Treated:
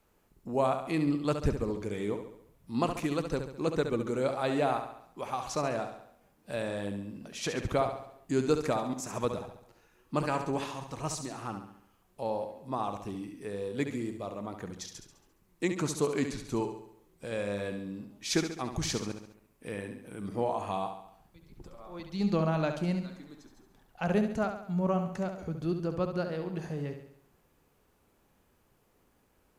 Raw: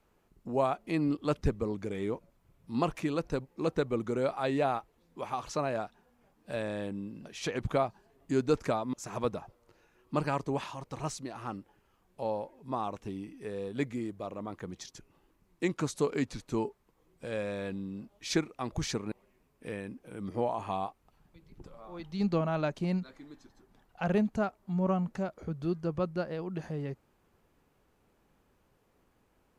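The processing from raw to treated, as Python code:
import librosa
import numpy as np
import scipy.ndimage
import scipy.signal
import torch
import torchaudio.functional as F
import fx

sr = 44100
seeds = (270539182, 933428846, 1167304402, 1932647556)

y = fx.high_shelf(x, sr, hz=6500.0, db=7.5)
y = fx.echo_feedback(y, sr, ms=69, feedback_pct=51, wet_db=-8)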